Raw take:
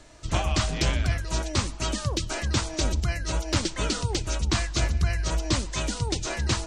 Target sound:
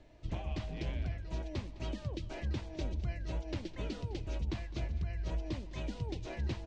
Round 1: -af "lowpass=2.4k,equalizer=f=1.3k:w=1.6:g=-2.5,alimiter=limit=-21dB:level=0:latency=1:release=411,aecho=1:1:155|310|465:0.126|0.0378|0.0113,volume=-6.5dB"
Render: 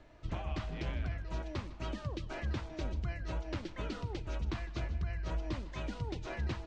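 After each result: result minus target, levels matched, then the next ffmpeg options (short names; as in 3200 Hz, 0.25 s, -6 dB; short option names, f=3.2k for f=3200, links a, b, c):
echo 52 ms early; 1000 Hz band +4.0 dB
-af "lowpass=2.4k,equalizer=f=1.3k:w=1.6:g=-2.5,alimiter=limit=-21dB:level=0:latency=1:release=411,aecho=1:1:207|414|621:0.126|0.0378|0.0113,volume=-6.5dB"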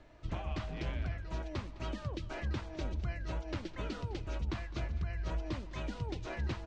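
1000 Hz band +4.0 dB
-af "lowpass=2.4k,equalizer=f=1.3k:w=1.6:g=-12.5,alimiter=limit=-21dB:level=0:latency=1:release=411,aecho=1:1:207|414|621:0.126|0.0378|0.0113,volume=-6.5dB"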